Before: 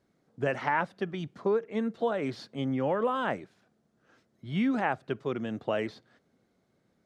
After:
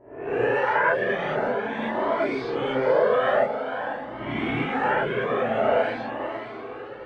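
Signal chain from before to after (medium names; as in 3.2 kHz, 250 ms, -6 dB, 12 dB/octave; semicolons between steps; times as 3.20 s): reverse spectral sustain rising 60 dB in 1.16 s; recorder AGC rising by 13 dB/s; level-controlled noise filter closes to 790 Hz, open at -23 dBFS; tone controls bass -8 dB, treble -6 dB; harmonic-percussive split harmonic -9 dB; treble shelf 2.5 kHz -9 dB; echo that smears into a reverb 523 ms, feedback 49%, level -7.5 dB; gated-style reverb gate 140 ms rising, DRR -7.5 dB; Shepard-style flanger rising 0.47 Hz; trim +5.5 dB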